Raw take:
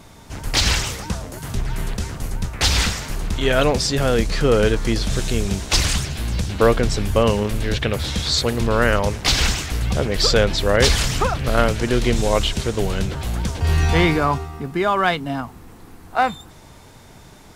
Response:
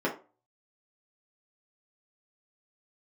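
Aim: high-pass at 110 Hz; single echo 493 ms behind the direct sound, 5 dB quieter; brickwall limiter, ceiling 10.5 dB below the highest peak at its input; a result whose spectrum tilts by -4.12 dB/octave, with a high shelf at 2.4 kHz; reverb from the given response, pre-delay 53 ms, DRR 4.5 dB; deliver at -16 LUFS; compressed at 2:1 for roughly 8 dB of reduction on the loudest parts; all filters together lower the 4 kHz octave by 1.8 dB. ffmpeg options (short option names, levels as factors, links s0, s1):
-filter_complex "[0:a]highpass=110,highshelf=f=2400:g=5,equalizer=f=4000:t=o:g=-7,acompressor=threshold=0.0501:ratio=2,alimiter=limit=0.119:level=0:latency=1,aecho=1:1:493:0.562,asplit=2[s0][s1];[1:a]atrim=start_sample=2205,adelay=53[s2];[s1][s2]afir=irnorm=-1:irlink=0,volume=0.188[s3];[s0][s3]amix=inputs=2:normalize=0,volume=3.35"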